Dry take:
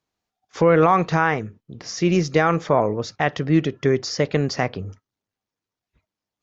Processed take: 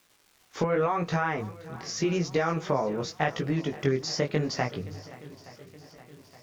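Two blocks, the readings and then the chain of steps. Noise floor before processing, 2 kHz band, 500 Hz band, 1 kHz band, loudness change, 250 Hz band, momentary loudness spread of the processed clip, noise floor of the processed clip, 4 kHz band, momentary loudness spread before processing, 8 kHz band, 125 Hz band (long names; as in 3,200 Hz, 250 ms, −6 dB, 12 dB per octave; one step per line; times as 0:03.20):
below −85 dBFS, −8.0 dB, −8.0 dB, −9.0 dB, −8.5 dB, −8.5 dB, 18 LU, −64 dBFS, −4.5 dB, 14 LU, can't be measured, −7.5 dB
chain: surface crackle 590 per second −45 dBFS
downward compressor, threshold −19 dBFS, peak gain reduction 8 dB
chorus effect 0.86 Hz, delay 17 ms, depth 6 ms
mains-hum notches 50/100 Hz
on a send: feedback echo with a long and a short gap by turns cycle 870 ms, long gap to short 1.5 to 1, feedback 52%, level −19 dB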